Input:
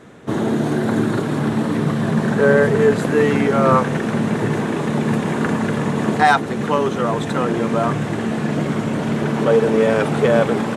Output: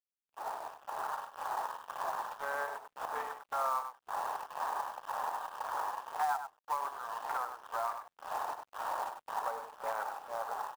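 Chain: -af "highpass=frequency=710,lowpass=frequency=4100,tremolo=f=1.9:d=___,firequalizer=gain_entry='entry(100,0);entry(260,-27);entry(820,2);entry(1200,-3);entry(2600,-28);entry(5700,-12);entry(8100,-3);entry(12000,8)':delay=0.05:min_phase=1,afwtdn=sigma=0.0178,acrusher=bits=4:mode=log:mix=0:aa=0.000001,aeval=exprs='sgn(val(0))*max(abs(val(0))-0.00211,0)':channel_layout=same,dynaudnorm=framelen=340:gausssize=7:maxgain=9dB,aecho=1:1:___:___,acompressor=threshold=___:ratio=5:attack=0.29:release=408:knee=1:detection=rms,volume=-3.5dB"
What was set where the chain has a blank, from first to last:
0.8, 98, 0.282, -24dB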